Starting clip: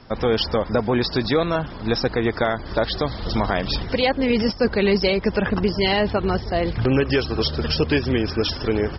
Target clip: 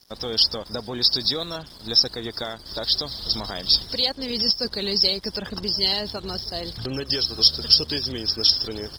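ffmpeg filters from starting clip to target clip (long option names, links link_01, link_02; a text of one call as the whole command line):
ffmpeg -i in.wav -af "aexciter=amount=13.6:drive=5.4:freq=3700,aeval=exprs='sgn(val(0))*max(abs(val(0))-0.0158,0)':channel_layout=same,volume=-10.5dB" out.wav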